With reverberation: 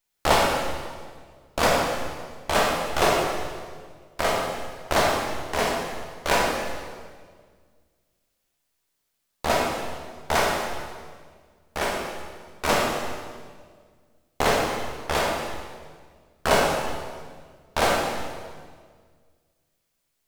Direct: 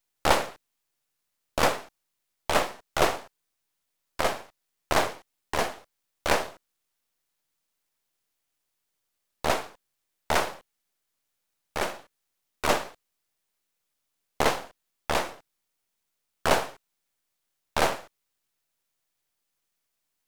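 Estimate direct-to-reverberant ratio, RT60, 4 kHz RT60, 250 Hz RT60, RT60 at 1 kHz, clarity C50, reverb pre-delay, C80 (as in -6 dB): -2.5 dB, 1.7 s, 1.5 s, 2.1 s, 1.6 s, 0.5 dB, 12 ms, 2.5 dB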